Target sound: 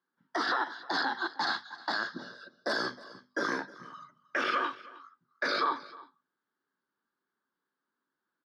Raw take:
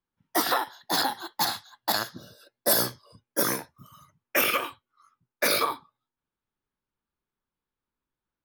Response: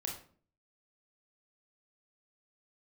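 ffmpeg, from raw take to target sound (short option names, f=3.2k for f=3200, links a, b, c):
-af "acompressor=threshold=-25dB:ratio=6,highpass=f=170:w=0.5412,highpass=f=170:w=1.3066,equalizer=f=270:t=q:w=4:g=5,equalizer=f=380:t=q:w=4:g=4,equalizer=f=1.6k:t=q:w=4:g=10,equalizer=f=2.5k:t=q:w=4:g=-9,equalizer=f=4.7k:t=q:w=4:g=4,lowpass=f=4.9k:w=0.5412,lowpass=f=4.9k:w=1.3066,alimiter=limit=-23dB:level=0:latency=1:release=11,equalizer=f=1.2k:w=2:g=5.5,bandreject=f=50:t=h:w=6,bandreject=f=100:t=h:w=6,bandreject=f=150:t=h:w=6,bandreject=f=200:t=h:w=6,bandreject=f=250:t=h:w=6,aecho=1:1:312:0.1"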